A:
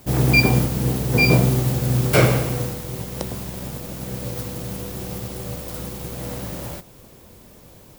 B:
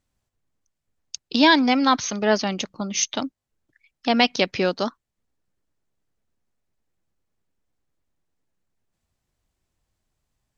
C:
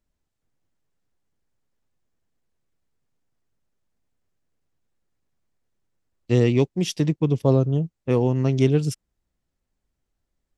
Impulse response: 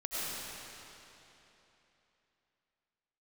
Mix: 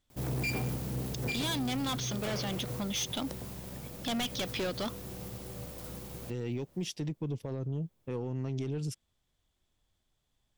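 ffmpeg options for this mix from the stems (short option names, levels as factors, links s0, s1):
-filter_complex "[0:a]asoftclip=type=tanh:threshold=0.133,adelay=100,volume=0.266[s0];[1:a]equalizer=f=3400:t=o:w=0.23:g=13,asoftclip=type=tanh:threshold=0.0631,volume=0.75[s1];[2:a]aeval=exprs='0.562*(cos(1*acos(clip(val(0)/0.562,-1,1)))-cos(1*PI/2))+0.0501*(cos(6*acos(clip(val(0)/0.562,-1,1)))-cos(6*PI/2))+0.0282*(cos(8*acos(clip(val(0)/0.562,-1,1)))-cos(8*PI/2))':c=same,volume=0.398,asplit=2[s2][s3];[s3]apad=whole_len=356614[s4];[s0][s4]sidechaincompress=threshold=0.00501:ratio=5:attack=5.5:release=1070[s5];[s5][s1][s2]amix=inputs=3:normalize=0,alimiter=level_in=1.5:limit=0.0631:level=0:latency=1:release=60,volume=0.668"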